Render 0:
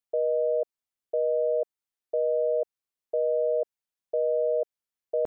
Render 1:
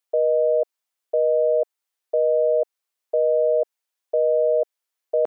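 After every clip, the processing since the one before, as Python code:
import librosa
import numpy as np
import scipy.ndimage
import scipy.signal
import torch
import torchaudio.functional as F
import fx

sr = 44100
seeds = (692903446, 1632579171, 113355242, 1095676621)

y = scipy.signal.sosfilt(scipy.signal.butter(2, 460.0, 'highpass', fs=sr, output='sos'), x)
y = y * 10.0 ** (8.0 / 20.0)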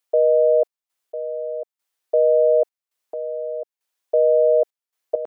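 y = fx.step_gate(x, sr, bpm=67, pattern='xxx.x...x', floor_db=-12.0, edge_ms=4.5)
y = y * 10.0 ** (3.5 / 20.0)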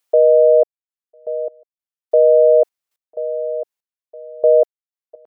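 y = fx.step_gate(x, sr, bpm=71, pattern='xxx...x...xxxx.', floor_db=-24.0, edge_ms=4.5)
y = y * 10.0 ** (5.0 / 20.0)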